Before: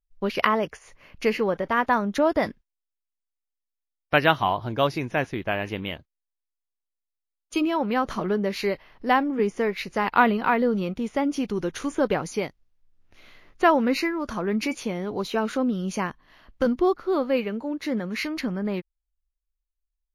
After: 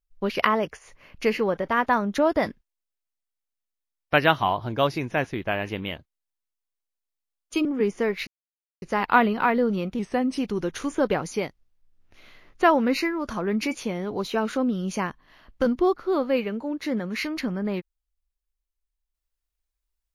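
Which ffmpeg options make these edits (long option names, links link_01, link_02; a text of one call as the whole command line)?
ffmpeg -i in.wav -filter_complex "[0:a]asplit=5[link_01][link_02][link_03][link_04][link_05];[link_01]atrim=end=7.652[link_06];[link_02]atrim=start=9.238:end=9.86,asetpts=PTS-STARTPTS,afade=type=out:start_time=0.618:duration=0.004:curve=hsin,apad=pad_dur=0.55[link_07];[link_03]atrim=start=9.86:end=11.034,asetpts=PTS-STARTPTS,afade=type=in:duration=0.004:curve=hsin[link_08];[link_04]atrim=start=11.03:end=11.38,asetpts=PTS-STARTPTS,asetrate=39690,aresample=44100[link_09];[link_05]atrim=start=11.376[link_10];[link_07][link_08]concat=n=2:v=0:a=1[link_11];[link_06][link_11]acrossfade=duration=0.004:curve1=hsin:curve2=hsin[link_12];[link_12][link_09]acrossfade=duration=0.004:curve1=hsin:curve2=hsin[link_13];[link_13][link_10]acrossfade=duration=0.004:curve1=hsin:curve2=hsin" out.wav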